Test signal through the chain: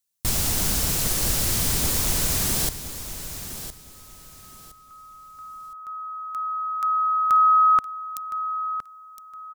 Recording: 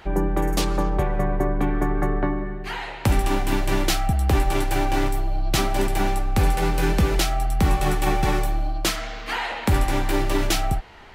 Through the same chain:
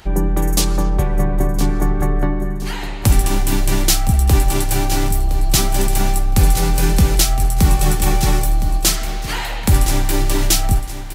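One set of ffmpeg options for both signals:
-af "bass=f=250:g=7,treble=f=4k:g=13,aecho=1:1:1014|2028|3042:0.266|0.0692|0.018"

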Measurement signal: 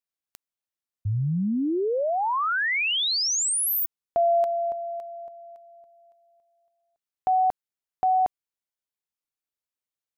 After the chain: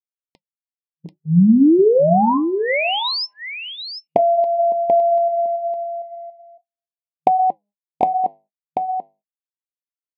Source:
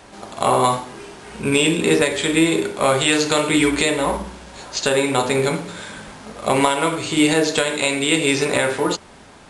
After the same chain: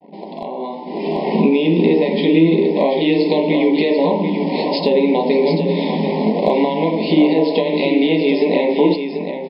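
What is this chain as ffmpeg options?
-filter_complex "[0:a]bandreject=f=203.6:t=h:w=4,bandreject=f=407.2:t=h:w=4,bandreject=f=610.8:t=h:w=4,bandreject=f=814.4:t=h:w=4,bandreject=f=1.018k:t=h:w=4,bandreject=f=1.2216k:t=h:w=4,bandreject=f=1.4252k:t=h:w=4,bandreject=f=1.6288k:t=h:w=4,bandreject=f=1.8324k:t=h:w=4,bandreject=f=2.036k:t=h:w=4,bandreject=f=2.2396k:t=h:w=4,bandreject=f=2.4432k:t=h:w=4,bandreject=f=2.6468k:t=h:w=4,bandreject=f=2.8504k:t=h:w=4,anlmdn=0.251,asplit=2[a][b];[b]alimiter=limit=-13dB:level=0:latency=1:release=307,volume=-1dB[c];[a][c]amix=inputs=2:normalize=0,acompressor=threshold=-28dB:ratio=6:attack=20:release=473:knee=1:detection=peak,afftfilt=real='re*between(b*sr/4096,160,5300)':imag='im*between(b*sr/4096,160,5300)':win_size=4096:overlap=0.75,volume=15dB,asoftclip=hard,volume=-15dB,flanger=delay=1.3:depth=8.6:regen=-80:speed=0.29:shape=sinusoidal,agate=range=-37dB:threshold=-55dB:ratio=3:release=140:detection=rms,asuperstop=centerf=1400:order=12:qfactor=1.6,tiltshelf=f=890:g=7,asplit=2[d][e];[e]aecho=0:1:738:0.422[f];[d][f]amix=inputs=2:normalize=0,dynaudnorm=f=280:g=7:m=14.5dB,volume=2dB"

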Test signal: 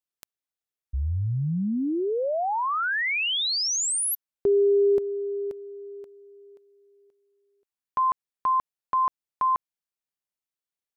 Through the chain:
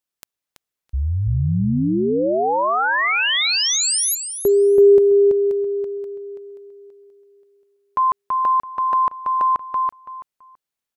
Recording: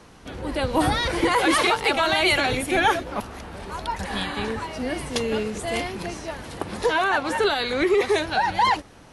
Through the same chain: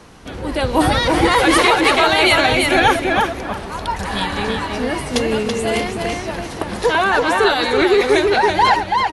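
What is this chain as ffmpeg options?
-filter_complex "[0:a]asplit=2[a][b];[b]adelay=331,lowpass=f=5k:p=1,volume=-3dB,asplit=2[c][d];[d]adelay=331,lowpass=f=5k:p=1,volume=0.21,asplit=2[e][f];[f]adelay=331,lowpass=f=5k:p=1,volume=0.21[g];[a][c][e][g]amix=inputs=4:normalize=0,volume=5.5dB"

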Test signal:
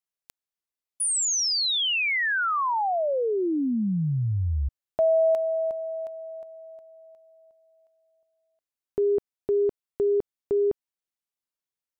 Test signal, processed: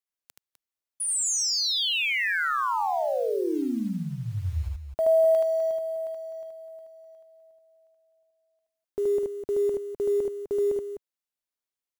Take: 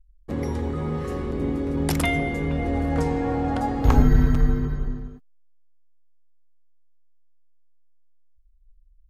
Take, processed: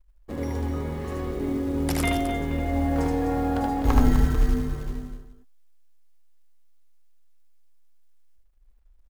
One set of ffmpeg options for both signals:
-af "equalizer=f=140:t=o:w=0.83:g=-7.5,acrusher=bits=7:mode=log:mix=0:aa=0.000001,aecho=1:1:75.8|253.6:0.794|0.355,volume=-3.5dB"

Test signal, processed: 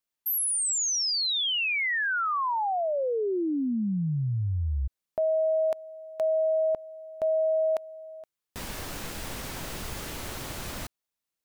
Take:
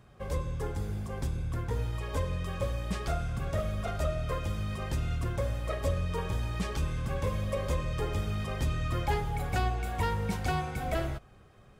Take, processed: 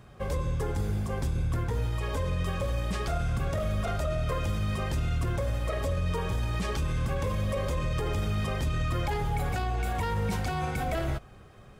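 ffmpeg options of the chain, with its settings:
-af "alimiter=level_in=3dB:limit=-24dB:level=0:latency=1:release=33,volume=-3dB,volume=5.5dB"

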